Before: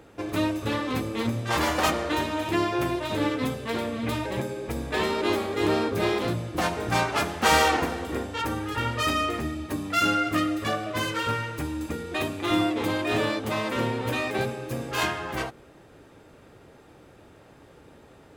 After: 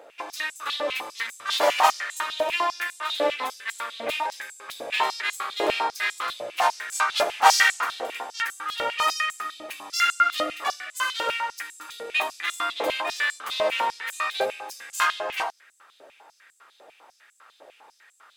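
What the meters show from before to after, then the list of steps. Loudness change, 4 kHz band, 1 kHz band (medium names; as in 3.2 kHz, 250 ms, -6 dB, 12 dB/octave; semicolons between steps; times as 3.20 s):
+1.0 dB, +3.5 dB, +3.0 dB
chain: step-sequenced high-pass 10 Hz 600–7600 Hz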